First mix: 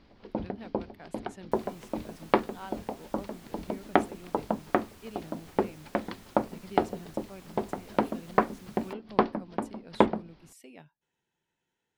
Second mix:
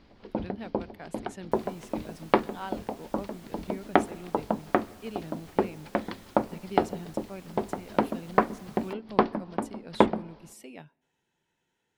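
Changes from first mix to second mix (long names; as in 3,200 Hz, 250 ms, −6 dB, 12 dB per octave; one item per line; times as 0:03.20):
speech +4.5 dB
reverb: on, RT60 1.2 s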